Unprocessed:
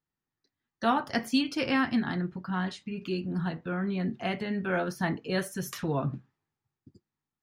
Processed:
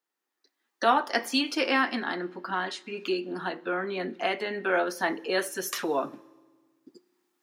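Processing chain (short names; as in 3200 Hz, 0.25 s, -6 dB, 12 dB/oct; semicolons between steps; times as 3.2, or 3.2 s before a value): recorder AGC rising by 8.1 dB/s; HPF 320 Hz 24 dB/oct; on a send: reverb RT60 1.5 s, pre-delay 3 ms, DRR 21 dB; on the sum: gain +4.5 dB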